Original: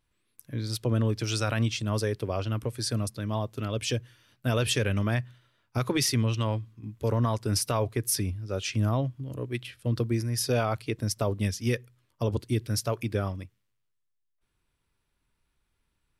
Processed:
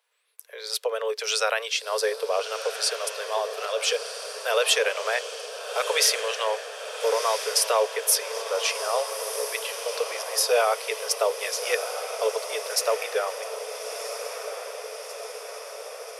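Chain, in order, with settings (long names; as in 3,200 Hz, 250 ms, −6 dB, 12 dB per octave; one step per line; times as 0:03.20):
Chebyshev high-pass filter 430 Hz, order 8
feedback delay with all-pass diffusion 1,336 ms, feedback 66%, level −8.5 dB
level +7.5 dB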